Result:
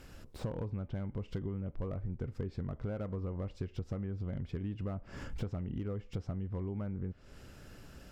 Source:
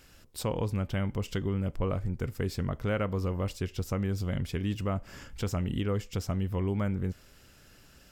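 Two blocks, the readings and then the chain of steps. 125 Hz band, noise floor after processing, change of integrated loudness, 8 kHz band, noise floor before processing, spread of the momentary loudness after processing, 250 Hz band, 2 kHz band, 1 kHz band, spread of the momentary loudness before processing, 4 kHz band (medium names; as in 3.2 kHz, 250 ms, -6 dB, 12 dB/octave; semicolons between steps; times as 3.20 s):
-6.5 dB, -56 dBFS, -7.5 dB, under -15 dB, -57 dBFS, 10 LU, -7.0 dB, -13.0 dB, -12.0 dB, 5 LU, -14.5 dB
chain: low-pass that closes with the level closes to 2.7 kHz, closed at -26.5 dBFS; tilt shelf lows +5 dB, about 1.5 kHz; compression 8:1, threshold -36 dBFS, peak gain reduction 15.5 dB; slew-rate limiter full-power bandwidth 9.1 Hz; trim +1.5 dB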